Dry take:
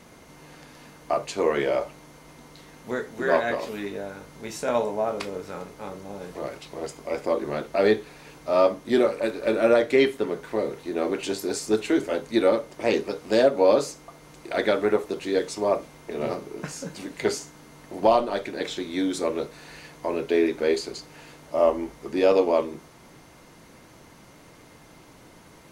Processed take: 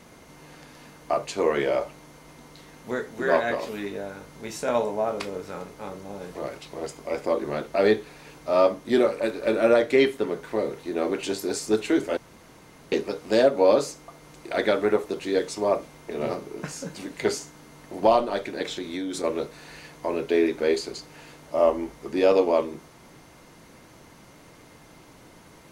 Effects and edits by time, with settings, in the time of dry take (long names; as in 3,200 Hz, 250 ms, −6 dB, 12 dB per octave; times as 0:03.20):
0:12.17–0:12.92: fill with room tone
0:18.62–0:19.24: downward compressor, threshold −27 dBFS